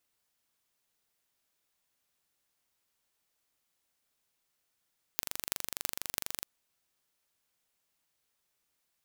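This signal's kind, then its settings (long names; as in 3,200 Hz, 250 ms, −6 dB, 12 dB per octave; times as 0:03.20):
impulse train 24.2 per second, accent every 8, −2 dBFS 1.26 s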